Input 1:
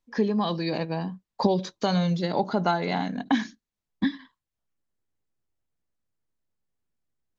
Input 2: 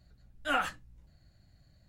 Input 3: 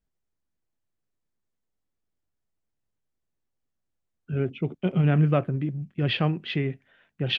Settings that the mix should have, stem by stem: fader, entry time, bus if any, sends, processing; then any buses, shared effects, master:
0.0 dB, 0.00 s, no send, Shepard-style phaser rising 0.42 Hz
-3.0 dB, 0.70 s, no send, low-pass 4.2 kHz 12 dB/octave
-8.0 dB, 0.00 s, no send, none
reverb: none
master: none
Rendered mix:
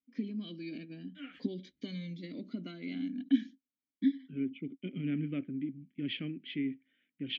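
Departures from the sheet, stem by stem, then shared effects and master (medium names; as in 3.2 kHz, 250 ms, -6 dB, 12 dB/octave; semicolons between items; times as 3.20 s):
stem 3 -8.0 dB -> +0.5 dB; master: extra vowel filter i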